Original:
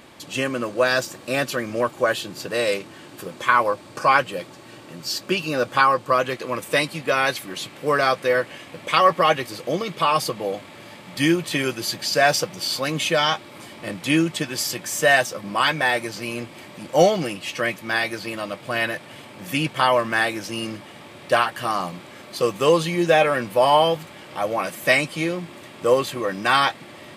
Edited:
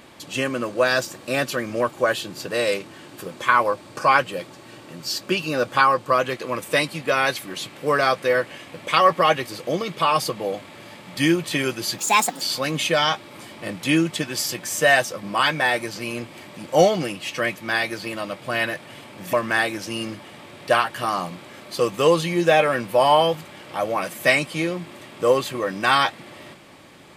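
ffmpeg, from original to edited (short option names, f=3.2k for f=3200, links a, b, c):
-filter_complex "[0:a]asplit=4[a][b][c][d];[a]atrim=end=11.984[e];[b]atrim=start=11.98:end=12.62,asetpts=PTS-STARTPTS,asetrate=65268,aresample=44100,atrim=end_sample=19070,asetpts=PTS-STARTPTS[f];[c]atrim=start=12.616:end=19.542[g];[d]atrim=start=19.948[h];[e][f]acrossfade=d=0.004:c1=hsin:c2=hsin[i];[i][g]acrossfade=d=0.004:c1=hsin:c2=hsin[j];[j][h]acrossfade=d=0.004:c1=hsin:c2=hsin"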